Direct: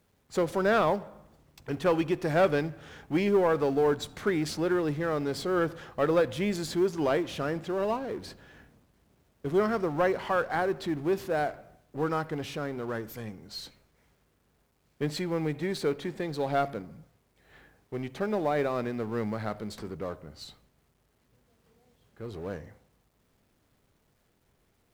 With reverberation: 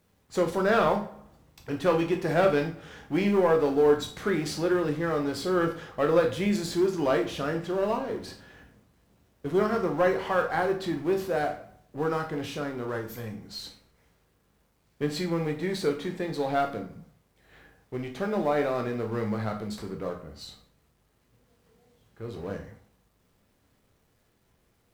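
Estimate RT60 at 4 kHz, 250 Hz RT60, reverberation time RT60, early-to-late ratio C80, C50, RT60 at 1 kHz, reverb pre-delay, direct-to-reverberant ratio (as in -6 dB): 0.35 s, 0.40 s, 0.40 s, 14.5 dB, 10.5 dB, 0.40 s, 7 ms, 3.0 dB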